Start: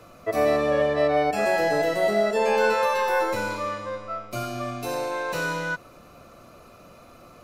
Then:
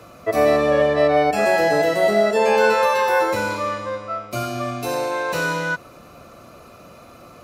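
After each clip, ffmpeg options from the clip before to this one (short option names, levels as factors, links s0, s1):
-af "highpass=41,volume=1.78"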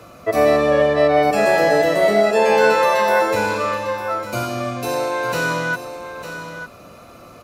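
-af "aecho=1:1:902:0.299,volume=1.19"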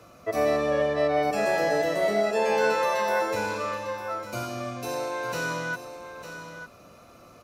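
-af "equalizer=f=5800:t=o:w=0.32:g=4.5,volume=0.355"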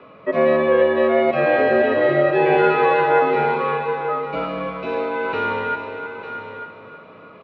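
-af "aecho=1:1:317|634|951|1268|1585:0.335|0.147|0.0648|0.0285|0.0126,highpass=f=210:t=q:w=0.5412,highpass=f=210:t=q:w=1.307,lowpass=f=3300:t=q:w=0.5176,lowpass=f=3300:t=q:w=0.7071,lowpass=f=3300:t=q:w=1.932,afreqshift=-62,volume=2.37"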